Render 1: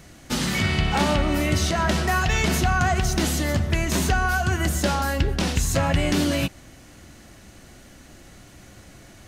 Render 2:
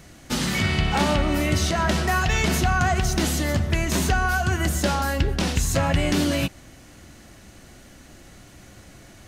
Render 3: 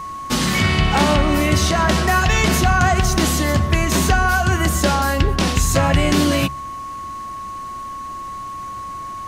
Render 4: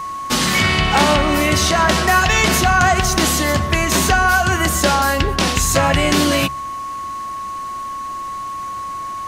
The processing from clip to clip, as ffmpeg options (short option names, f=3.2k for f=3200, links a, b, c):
-af anull
-af "aeval=exprs='val(0)+0.0224*sin(2*PI*1100*n/s)':c=same,bandreject=f=69.66:t=h:w=4,bandreject=f=139.32:t=h:w=4,bandreject=f=208.98:t=h:w=4,volume=5.5dB"
-af "lowshelf=f=310:g=-7.5,volume=4dB"